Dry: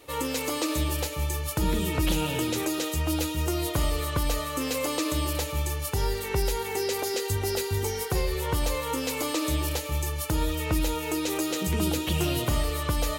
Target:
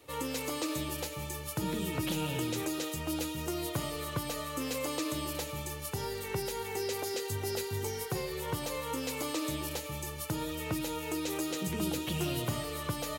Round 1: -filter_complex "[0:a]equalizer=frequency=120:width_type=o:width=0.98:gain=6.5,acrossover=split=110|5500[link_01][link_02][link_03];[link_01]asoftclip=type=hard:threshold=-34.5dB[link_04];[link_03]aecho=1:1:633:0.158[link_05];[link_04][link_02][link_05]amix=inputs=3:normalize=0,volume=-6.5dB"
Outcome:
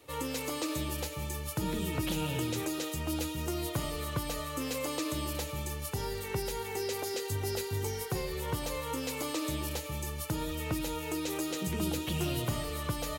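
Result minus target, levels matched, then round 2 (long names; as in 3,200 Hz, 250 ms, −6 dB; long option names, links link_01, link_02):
hard clipping: distortion −4 dB
-filter_complex "[0:a]equalizer=frequency=120:width_type=o:width=0.98:gain=6.5,acrossover=split=110|5500[link_01][link_02][link_03];[link_01]asoftclip=type=hard:threshold=-46dB[link_04];[link_03]aecho=1:1:633:0.158[link_05];[link_04][link_02][link_05]amix=inputs=3:normalize=0,volume=-6.5dB"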